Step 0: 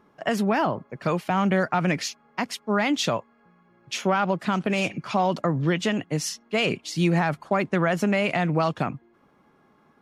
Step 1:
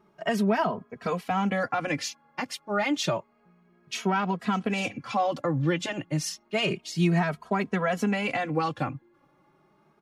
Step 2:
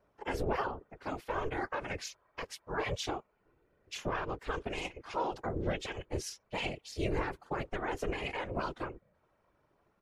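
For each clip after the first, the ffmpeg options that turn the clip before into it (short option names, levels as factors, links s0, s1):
-filter_complex "[0:a]asplit=2[s0][s1];[s1]adelay=2.8,afreqshift=0.3[s2];[s0][s2]amix=inputs=2:normalize=1"
-af "aeval=exprs='val(0)*sin(2*PI*210*n/s)':c=same,afftfilt=real='hypot(re,im)*cos(2*PI*random(0))':imag='hypot(re,im)*sin(2*PI*random(1))':win_size=512:overlap=0.75"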